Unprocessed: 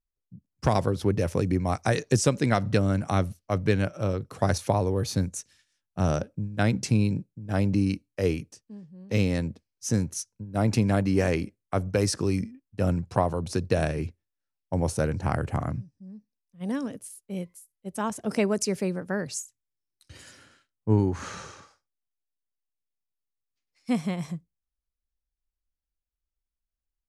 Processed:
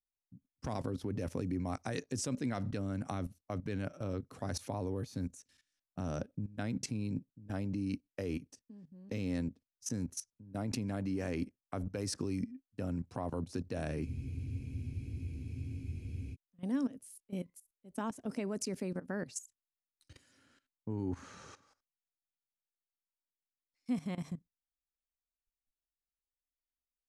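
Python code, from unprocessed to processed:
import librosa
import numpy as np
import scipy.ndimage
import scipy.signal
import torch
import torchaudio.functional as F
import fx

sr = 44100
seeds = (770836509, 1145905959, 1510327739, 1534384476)

y = fx.level_steps(x, sr, step_db=16)
y = fx.peak_eq(y, sr, hz=260.0, db=9.0, octaves=0.34)
y = fx.spec_freeze(y, sr, seeds[0], at_s=14.07, hold_s=2.26)
y = y * 10.0 ** (-5.5 / 20.0)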